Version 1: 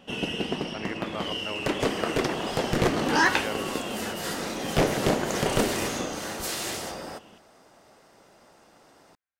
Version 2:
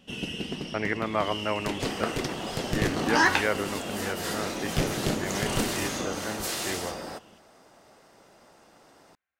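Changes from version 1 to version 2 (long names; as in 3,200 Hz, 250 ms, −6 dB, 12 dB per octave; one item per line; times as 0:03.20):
speech +8.5 dB
first sound: add parametric band 830 Hz −10.5 dB 2.6 octaves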